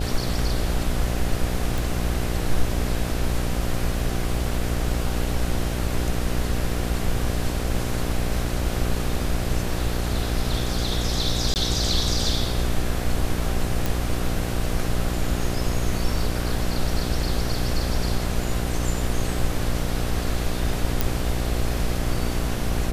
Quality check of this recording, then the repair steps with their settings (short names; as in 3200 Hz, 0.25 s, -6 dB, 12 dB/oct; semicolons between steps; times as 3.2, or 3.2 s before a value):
buzz 60 Hz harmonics 13 -27 dBFS
1.78 pop
11.54–11.56 gap 19 ms
13.86 pop
21.01 pop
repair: de-click; de-hum 60 Hz, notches 13; interpolate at 11.54, 19 ms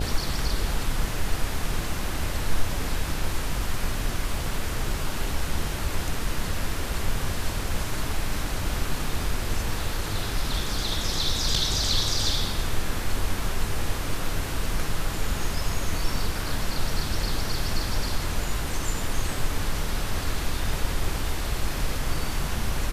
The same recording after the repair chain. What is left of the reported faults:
none